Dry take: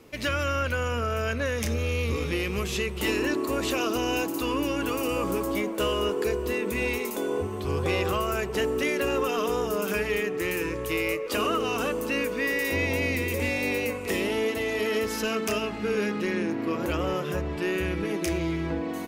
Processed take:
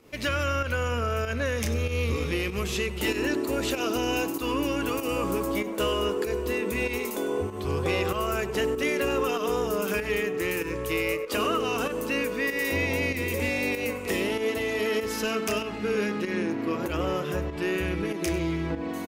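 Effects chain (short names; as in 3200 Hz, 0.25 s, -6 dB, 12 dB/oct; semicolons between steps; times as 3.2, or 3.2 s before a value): 2.92–4.08 notch 1100 Hz, Q 11; echo 98 ms -17 dB; pump 96 bpm, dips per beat 1, -9 dB, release 0.127 s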